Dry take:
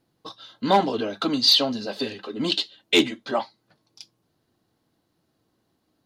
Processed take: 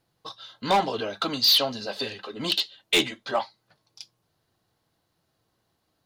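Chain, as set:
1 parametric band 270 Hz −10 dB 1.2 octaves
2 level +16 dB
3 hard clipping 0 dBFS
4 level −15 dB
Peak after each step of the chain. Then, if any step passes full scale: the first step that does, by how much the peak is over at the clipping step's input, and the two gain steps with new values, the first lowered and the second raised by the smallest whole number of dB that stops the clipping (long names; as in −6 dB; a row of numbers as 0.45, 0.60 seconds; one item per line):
−6.5, +9.5, 0.0, −15.0 dBFS
step 2, 9.5 dB
step 2 +6 dB, step 4 −5 dB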